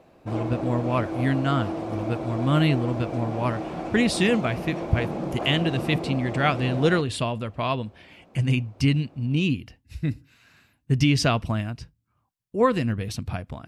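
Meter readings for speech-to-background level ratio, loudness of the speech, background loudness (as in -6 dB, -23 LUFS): 6.0 dB, -25.5 LUFS, -31.5 LUFS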